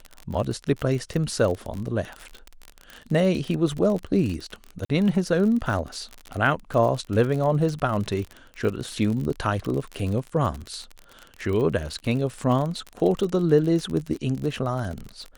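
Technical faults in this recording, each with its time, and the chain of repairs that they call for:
crackle 41/s -28 dBFS
4.85–4.89 gap 45 ms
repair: de-click; interpolate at 4.85, 45 ms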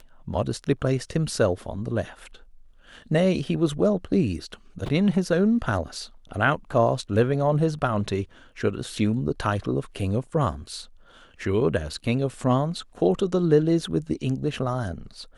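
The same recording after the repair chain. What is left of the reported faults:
none

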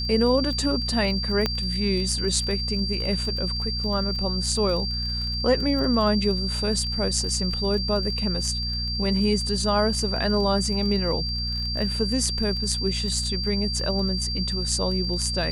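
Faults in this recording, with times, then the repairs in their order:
crackle 24/s -30 dBFS
hum 60 Hz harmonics 4 -30 dBFS
tone 4700 Hz -28 dBFS
1.46 pop -9 dBFS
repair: de-click; de-hum 60 Hz, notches 4; notch 4700 Hz, Q 30

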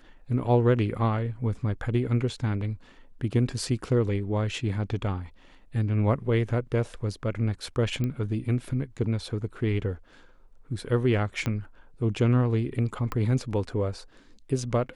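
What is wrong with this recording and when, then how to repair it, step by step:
8.04 pop -18 dBFS
11.46 pop -15 dBFS
13.12 pop -18 dBFS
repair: de-click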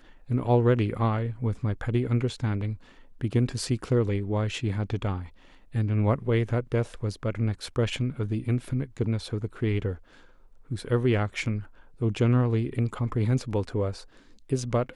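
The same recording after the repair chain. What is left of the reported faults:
8.04 pop
11.46 pop
13.12 pop

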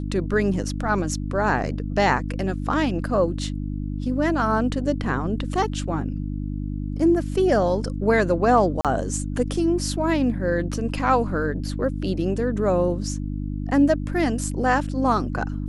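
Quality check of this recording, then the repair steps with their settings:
hum 50 Hz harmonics 6 -28 dBFS
8.81–8.85 gap 37 ms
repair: de-hum 50 Hz, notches 6; interpolate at 8.81, 37 ms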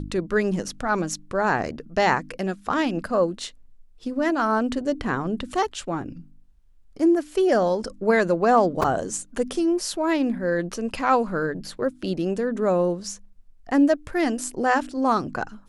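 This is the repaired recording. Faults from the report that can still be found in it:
none

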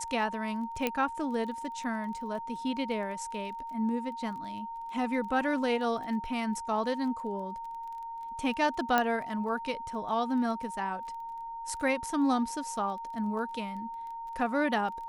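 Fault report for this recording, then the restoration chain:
crackle 20/s -41 dBFS
tone 920 Hz -37 dBFS
0.87 pop -14 dBFS
8.98 pop -12 dBFS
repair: de-click; notch 920 Hz, Q 30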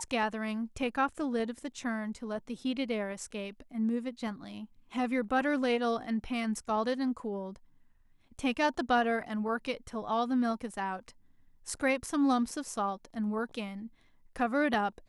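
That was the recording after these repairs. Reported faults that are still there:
8.98 pop

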